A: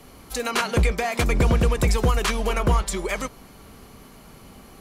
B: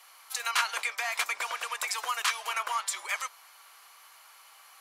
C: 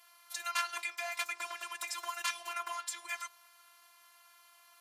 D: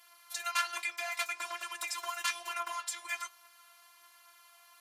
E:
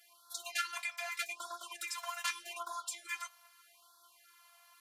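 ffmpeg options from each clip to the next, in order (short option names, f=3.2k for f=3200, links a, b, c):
-af "highpass=f=930:w=0.5412,highpass=f=930:w=1.3066,volume=-2dB"
-af "afftfilt=real='hypot(re,im)*cos(PI*b)':imag='0':win_size=512:overlap=0.75,volume=-3.5dB"
-af "flanger=delay=8:depth=2.4:regen=52:speed=1.2:shape=triangular,volume=6dB"
-af "afftfilt=real='re*(1-between(b*sr/1024,340*pow(2400/340,0.5+0.5*sin(2*PI*0.82*pts/sr))/1.41,340*pow(2400/340,0.5+0.5*sin(2*PI*0.82*pts/sr))*1.41))':imag='im*(1-between(b*sr/1024,340*pow(2400/340,0.5+0.5*sin(2*PI*0.82*pts/sr))/1.41,340*pow(2400/340,0.5+0.5*sin(2*PI*0.82*pts/sr))*1.41))':win_size=1024:overlap=0.75,volume=-3dB"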